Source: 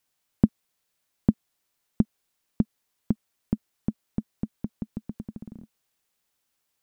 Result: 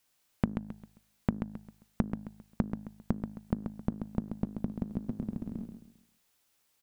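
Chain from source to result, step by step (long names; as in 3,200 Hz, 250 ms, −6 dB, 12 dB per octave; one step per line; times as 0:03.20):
hum removal 52.15 Hz, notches 35
downward compressor 3 to 1, threshold −32 dBFS, peak gain reduction 14 dB
repeating echo 133 ms, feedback 34%, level −7.5 dB
level +3.5 dB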